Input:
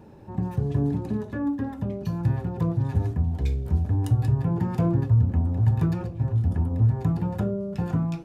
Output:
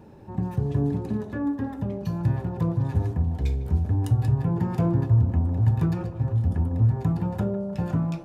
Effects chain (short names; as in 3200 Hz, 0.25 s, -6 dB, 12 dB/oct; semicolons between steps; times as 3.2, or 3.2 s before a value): narrowing echo 0.153 s, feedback 70%, band-pass 710 Hz, level -11 dB